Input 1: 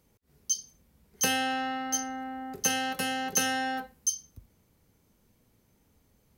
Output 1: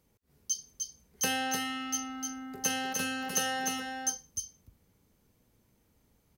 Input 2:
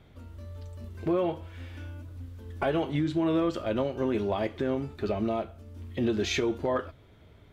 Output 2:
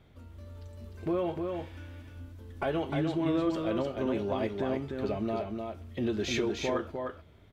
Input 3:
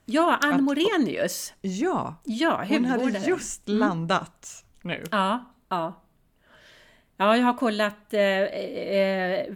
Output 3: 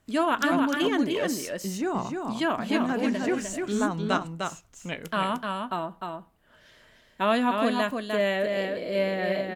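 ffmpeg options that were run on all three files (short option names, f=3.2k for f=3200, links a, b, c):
-af "aecho=1:1:303:0.596,volume=-3.5dB"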